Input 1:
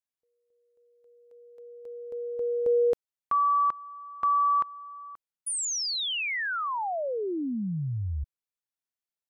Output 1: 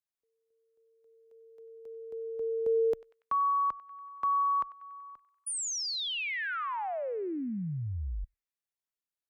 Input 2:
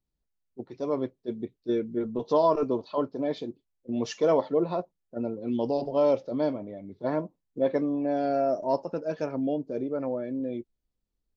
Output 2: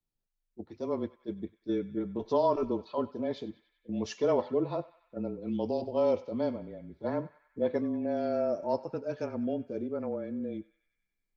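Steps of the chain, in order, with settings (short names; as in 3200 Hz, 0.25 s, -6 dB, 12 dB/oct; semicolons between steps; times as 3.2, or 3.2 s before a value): frequency shift -25 Hz; narrowing echo 95 ms, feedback 72%, band-pass 2100 Hz, level -15.5 dB; gain -4 dB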